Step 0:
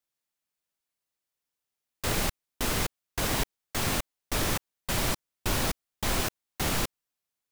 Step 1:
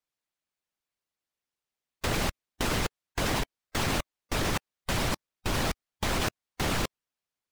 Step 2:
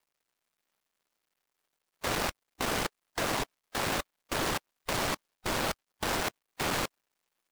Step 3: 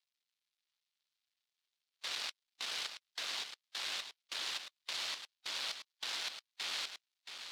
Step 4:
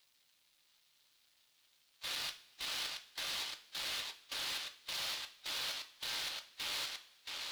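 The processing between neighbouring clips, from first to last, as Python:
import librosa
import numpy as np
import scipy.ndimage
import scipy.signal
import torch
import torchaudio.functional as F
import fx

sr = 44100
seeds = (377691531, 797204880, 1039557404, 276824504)

y1 = fx.high_shelf(x, sr, hz=8300.0, db=-11.5)
y1 = fx.hpss(y1, sr, part='percussive', gain_db=9)
y1 = fx.level_steps(y1, sr, step_db=13)
y1 = y1 * librosa.db_to_amplitude(-1.5)
y2 = fx.dead_time(y1, sr, dead_ms=0.24)
y2 = fx.low_shelf(y2, sr, hz=240.0, db=-10.5)
y2 = fx.power_curve(y2, sr, exponent=0.7)
y2 = y2 * librosa.db_to_amplitude(-1.5)
y3 = fx.bandpass_q(y2, sr, hz=3900.0, q=1.9)
y3 = y3 + 10.0 ** (-8.5 / 20.0) * np.pad(y3, (int(675 * sr / 1000.0), 0))[:len(y3)]
y4 = 10.0 ** (-39.0 / 20.0) * np.tanh(y3 / 10.0 ** (-39.0 / 20.0))
y4 = fx.power_curve(y4, sr, exponent=0.7)
y4 = fx.rev_double_slope(y4, sr, seeds[0], early_s=0.34, late_s=1.7, knee_db=-19, drr_db=6.5)
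y4 = y4 * librosa.db_to_amplitude(3.0)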